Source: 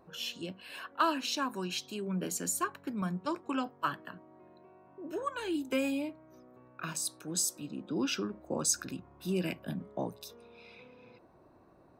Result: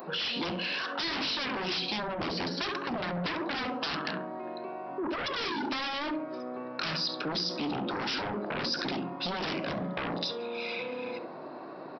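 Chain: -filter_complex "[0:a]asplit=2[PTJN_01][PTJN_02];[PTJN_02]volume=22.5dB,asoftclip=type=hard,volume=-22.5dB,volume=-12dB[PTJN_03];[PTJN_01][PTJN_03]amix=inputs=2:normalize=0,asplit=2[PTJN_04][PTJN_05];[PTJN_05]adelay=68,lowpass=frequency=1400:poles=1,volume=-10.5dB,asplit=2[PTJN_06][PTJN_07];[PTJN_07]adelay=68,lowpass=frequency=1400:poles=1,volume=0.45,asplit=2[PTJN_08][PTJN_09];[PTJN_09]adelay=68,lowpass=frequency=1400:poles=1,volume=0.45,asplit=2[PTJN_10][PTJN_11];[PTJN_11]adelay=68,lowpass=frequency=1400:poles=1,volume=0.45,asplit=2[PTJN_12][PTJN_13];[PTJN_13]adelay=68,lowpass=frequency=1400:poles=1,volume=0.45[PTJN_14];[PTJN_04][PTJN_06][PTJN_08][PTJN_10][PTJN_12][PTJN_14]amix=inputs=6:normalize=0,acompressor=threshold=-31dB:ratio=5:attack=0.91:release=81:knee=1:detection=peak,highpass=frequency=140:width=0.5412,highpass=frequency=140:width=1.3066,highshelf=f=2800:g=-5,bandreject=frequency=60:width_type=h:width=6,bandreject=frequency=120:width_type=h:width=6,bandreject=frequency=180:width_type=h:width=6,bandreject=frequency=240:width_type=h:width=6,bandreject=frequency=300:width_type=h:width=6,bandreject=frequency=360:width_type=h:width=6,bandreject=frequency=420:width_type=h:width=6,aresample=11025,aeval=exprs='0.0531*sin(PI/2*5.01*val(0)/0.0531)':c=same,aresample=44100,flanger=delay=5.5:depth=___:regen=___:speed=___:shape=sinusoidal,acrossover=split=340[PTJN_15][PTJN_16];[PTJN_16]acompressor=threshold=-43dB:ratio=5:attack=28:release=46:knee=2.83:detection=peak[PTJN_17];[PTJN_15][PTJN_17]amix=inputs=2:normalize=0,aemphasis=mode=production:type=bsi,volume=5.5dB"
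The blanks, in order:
2.7, -86, 1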